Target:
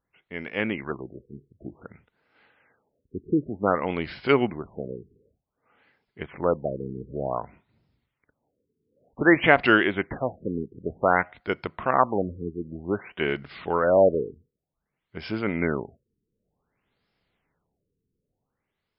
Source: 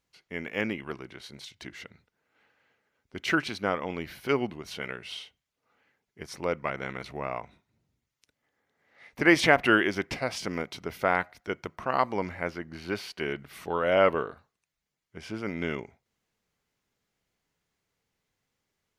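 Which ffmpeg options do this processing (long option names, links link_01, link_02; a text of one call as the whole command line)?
ffmpeg -i in.wav -af "dynaudnorm=framelen=110:gausssize=13:maxgain=6.5dB,afftfilt=real='re*lt(b*sr/1024,460*pow(5500/460,0.5+0.5*sin(2*PI*0.54*pts/sr)))':imag='im*lt(b*sr/1024,460*pow(5500/460,0.5+0.5*sin(2*PI*0.54*pts/sr)))':win_size=1024:overlap=0.75" out.wav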